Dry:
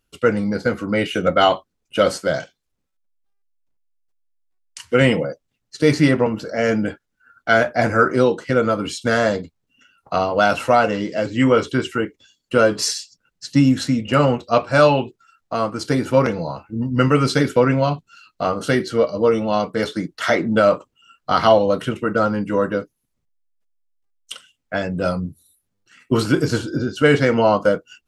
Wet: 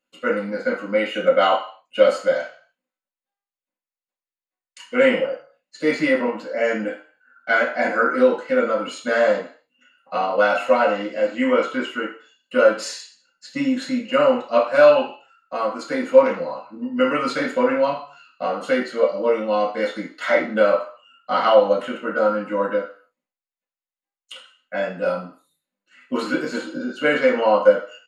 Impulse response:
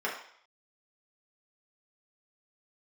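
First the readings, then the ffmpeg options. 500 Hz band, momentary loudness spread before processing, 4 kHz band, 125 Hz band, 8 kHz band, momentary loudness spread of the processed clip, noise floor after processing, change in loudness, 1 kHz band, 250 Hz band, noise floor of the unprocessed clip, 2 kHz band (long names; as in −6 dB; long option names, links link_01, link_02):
+0.5 dB, 12 LU, −4.5 dB, below −15 dB, can't be measured, 13 LU, below −85 dBFS, −1.5 dB, −2.0 dB, −5.5 dB, −75 dBFS, −0.5 dB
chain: -filter_complex "[0:a]aecho=1:1:3.9:0.31[link_01];[1:a]atrim=start_sample=2205,asetrate=57330,aresample=44100[link_02];[link_01][link_02]afir=irnorm=-1:irlink=0,volume=-7.5dB"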